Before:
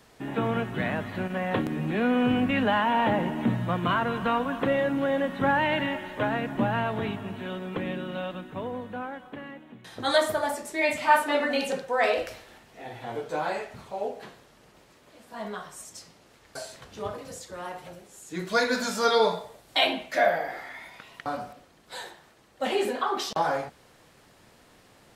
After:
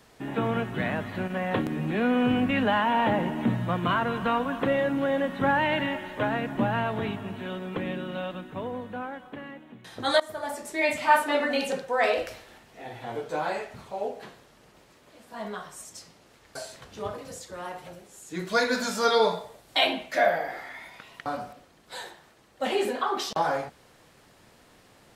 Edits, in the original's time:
10.20–10.70 s: fade in, from -20 dB

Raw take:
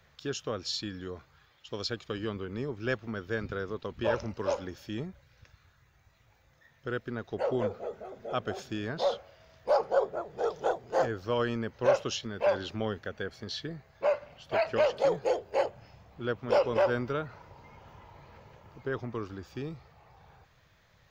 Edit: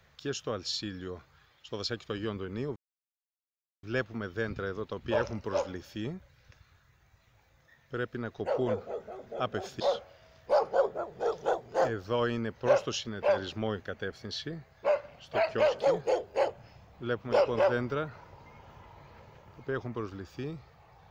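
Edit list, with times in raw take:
2.76 s: insert silence 1.07 s
8.73–8.98 s: delete

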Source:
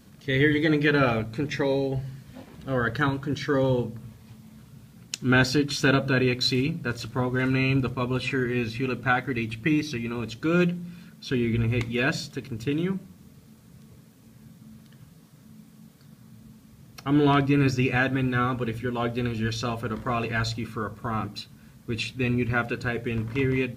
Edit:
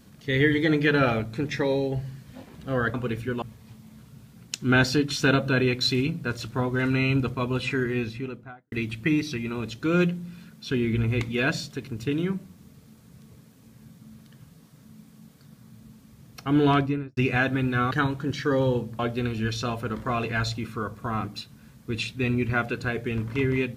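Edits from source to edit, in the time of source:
2.94–4.02 s: swap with 18.51–18.99 s
8.44–9.32 s: studio fade out
17.32–17.77 s: studio fade out

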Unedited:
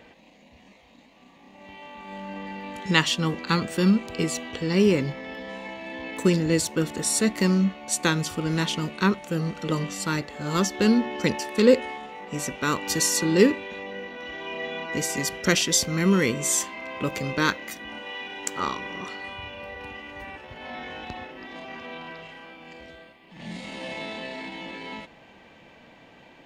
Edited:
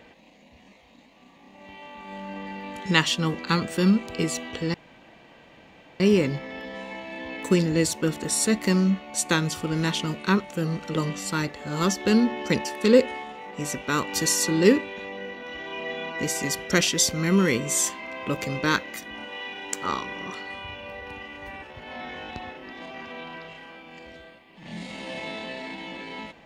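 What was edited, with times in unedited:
4.74 s: insert room tone 1.26 s

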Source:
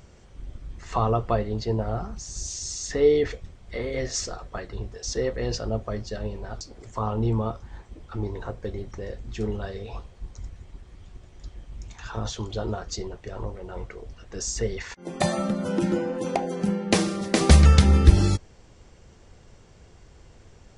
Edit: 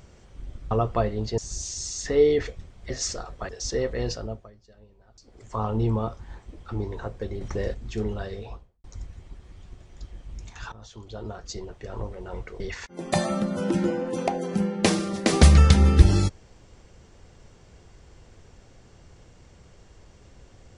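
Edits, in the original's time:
0.71–1.05 s: delete
1.72–2.23 s: delete
3.75–4.03 s: delete
4.62–4.92 s: delete
5.46–7.05 s: dip -22 dB, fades 0.48 s
8.84–9.17 s: gain +6.5 dB
9.77–10.27 s: studio fade out
12.15–13.48 s: fade in, from -20 dB
14.03–14.68 s: delete

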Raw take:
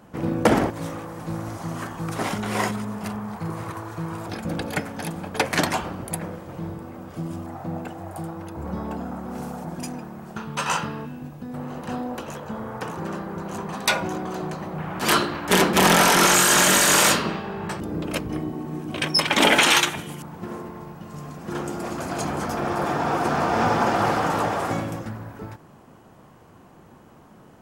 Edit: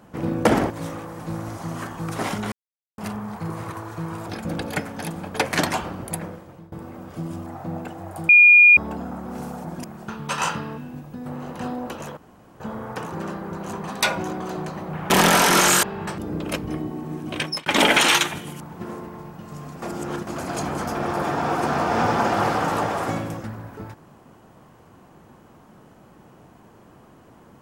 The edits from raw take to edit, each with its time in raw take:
2.52–2.98 s: mute
6.19–6.72 s: fade out, to -21.5 dB
8.29–8.77 s: bleep 2.43 kHz -7.5 dBFS
9.84–10.12 s: delete
12.45 s: insert room tone 0.43 s
14.95–15.76 s: delete
16.49–17.45 s: delete
19.00–19.28 s: fade out
21.44–21.89 s: reverse

